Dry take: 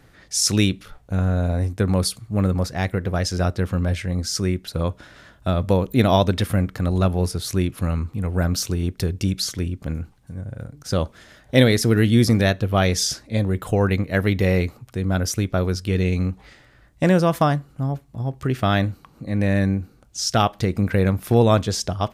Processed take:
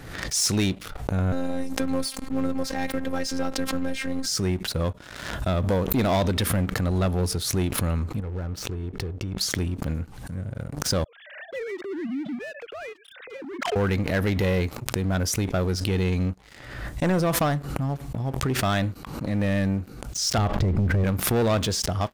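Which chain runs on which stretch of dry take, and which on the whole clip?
1.32–4.26 s: robot voice 265 Hz + three bands compressed up and down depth 40%
8.20–9.41 s: low-pass 1.2 kHz 6 dB/octave + comb 2.3 ms, depth 37% + compression 2:1, threshold -34 dBFS
11.04–13.76 s: formants replaced by sine waves + peaking EQ 1 kHz -15 dB 1.3 oct + compression 2:1, threshold -40 dBFS
20.38–21.04 s: RIAA curve playback + compression 5:1, threshold -10 dBFS
whole clip: dynamic bell 120 Hz, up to -3 dB, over -29 dBFS, Q 2; waveshaping leveller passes 3; swell ahead of each attack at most 53 dB/s; trim -12 dB

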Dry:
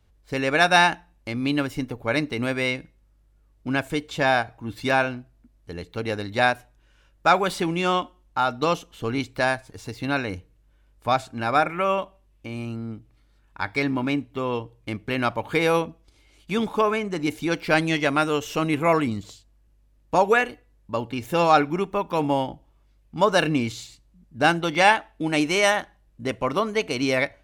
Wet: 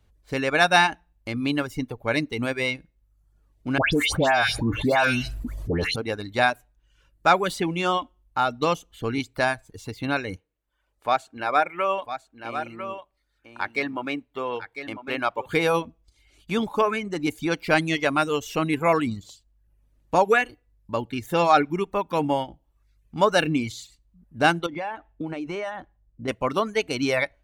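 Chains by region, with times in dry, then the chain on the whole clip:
3.78–5.96 s: phase dispersion highs, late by 148 ms, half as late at 2 kHz + level flattener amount 70%
10.36–15.46 s: tone controls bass -14 dB, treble -5 dB + delay 1000 ms -9.5 dB
24.66–26.28 s: low-pass 1 kHz 6 dB/octave + compression 12:1, threshold -25 dBFS
whole clip: band-stop 5.2 kHz, Q 22; reverb removal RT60 0.65 s

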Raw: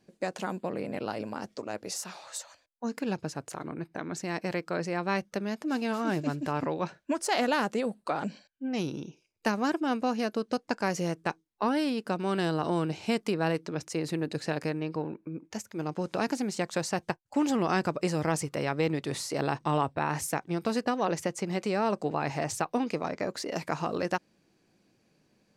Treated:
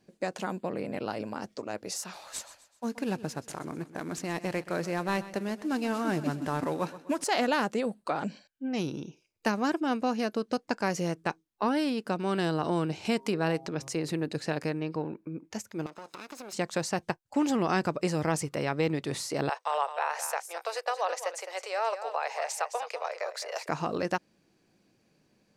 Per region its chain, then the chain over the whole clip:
2.13–7.24 s: CVSD coder 64 kbps + feedback delay 127 ms, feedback 46%, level -16 dB
13.05–14.17 s: de-hum 134.2 Hz, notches 9 + upward compressor, threshold -31 dBFS
15.86–16.53 s: comb filter that takes the minimum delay 0.76 ms + high-pass 390 Hz + compression, threshold -39 dBFS
19.49–23.69 s: steep high-pass 490 Hz 48 dB/octave + delay 213 ms -10.5 dB
whole clip: none

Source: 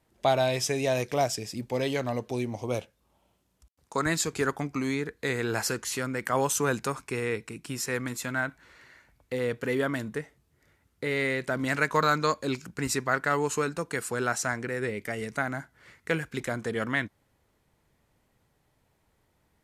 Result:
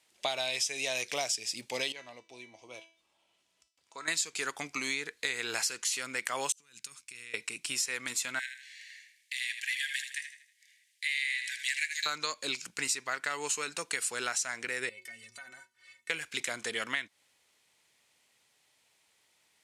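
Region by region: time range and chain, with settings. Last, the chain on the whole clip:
1.92–4.08 s: low-pass 2.6 kHz 6 dB/octave + upward compressor, threshold -46 dBFS + feedback comb 330 Hz, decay 0.42 s, mix 80%
6.52–7.34 s: amplifier tone stack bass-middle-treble 6-0-2 + compressor with a negative ratio -51 dBFS, ratio -0.5
8.39–12.06 s: Chebyshev high-pass 1.6 kHz, order 10 + feedback delay 79 ms, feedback 40%, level -9 dB
14.89–16.10 s: inharmonic resonator 110 Hz, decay 0.3 s, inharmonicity 0.03 + compression 3:1, threshold -46 dBFS
whole clip: high-pass 990 Hz 6 dB/octave; high-order bell 4.6 kHz +10 dB 2.5 oct; compression 6:1, threshold -29 dBFS

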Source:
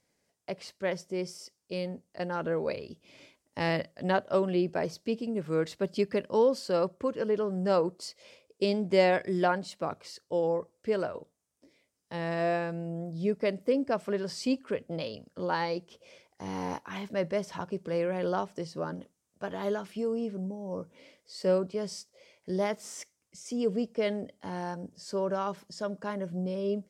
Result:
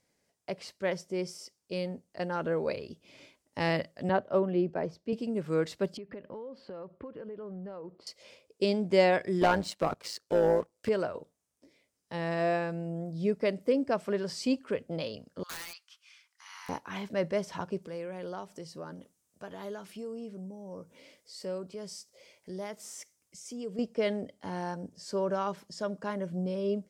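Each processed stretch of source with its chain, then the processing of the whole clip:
4.09–5.13 s: low-pass 1.3 kHz 6 dB/octave + three bands expanded up and down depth 40%
5.97–8.07 s: compression 10:1, threshold -38 dBFS + distance through air 400 m
9.41–10.89 s: waveshaping leveller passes 2 + AM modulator 110 Hz, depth 45% + tape noise reduction on one side only encoder only
15.43–16.69 s: elliptic high-pass 1.2 kHz, stop band 80 dB + integer overflow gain 34.5 dB
17.82–23.79 s: treble shelf 6.7 kHz +8.5 dB + compression 1.5:1, threshold -52 dBFS
whole clip: none

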